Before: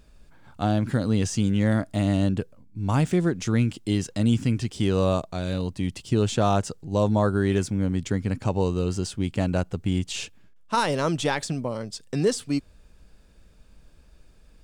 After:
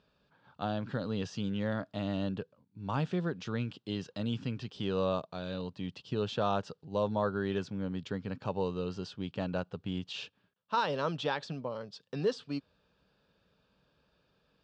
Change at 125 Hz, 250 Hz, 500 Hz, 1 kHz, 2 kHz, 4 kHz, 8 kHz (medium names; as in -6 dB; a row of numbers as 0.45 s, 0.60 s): -13.5 dB, -11.5 dB, -7.5 dB, -6.5 dB, -8.0 dB, -7.5 dB, under -20 dB